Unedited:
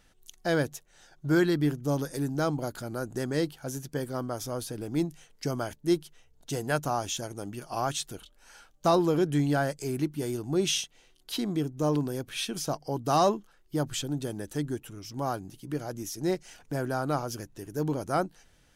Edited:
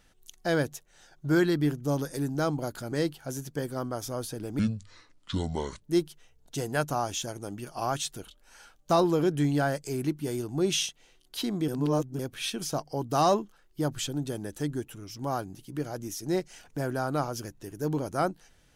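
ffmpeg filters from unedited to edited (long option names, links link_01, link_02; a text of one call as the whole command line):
ffmpeg -i in.wav -filter_complex "[0:a]asplit=6[link_01][link_02][link_03][link_04][link_05][link_06];[link_01]atrim=end=2.922[link_07];[link_02]atrim=start=3.298:end=4.974[link_08];[link_03]atrim=start=4.97:end=5.77,asetpts=PTS-STARTPTS,asetrate=28665,aresample=44100[link_09];[link_04]atrim=start=5.766:end=11.632[link_10];[link_05]atrim=start=11.628:end=12.142,asetpts=PTS-STARTPTS,areverse[link_11];[link_06]atrim=start=12.138[link_12];[link_07][link_08]acrossfade=duration=0.004:curve1=hsin:curve2=hsin[link_13];[link_13][link_09]acrossfade=duration=0.004:curve1=hsin:curve2=hsin[link_14];[link_14][link_10]acrossfade=duration=0.004:curve1=hsin:curve2=hsin[link_15];[link_15][link_11]acrossfade=duration=0.004:curve1=hsin:curve2=hsin[link_16];[link_16][link_12]acrossfade=duration=0.004:curve1=hsin:curve2=hsin" out.wav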